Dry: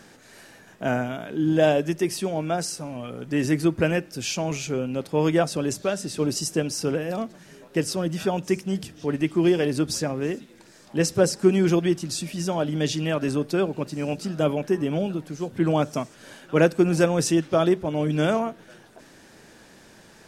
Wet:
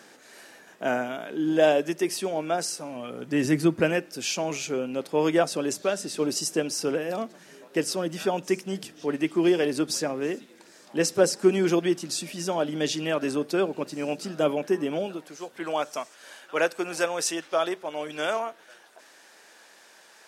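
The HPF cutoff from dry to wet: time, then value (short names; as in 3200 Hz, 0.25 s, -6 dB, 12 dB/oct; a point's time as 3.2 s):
2.81 s 300 Hz
3.66 s 120 Hz
3.96 s 270 Hz
14.82 s 270 Hz
15.53 s 660 Hz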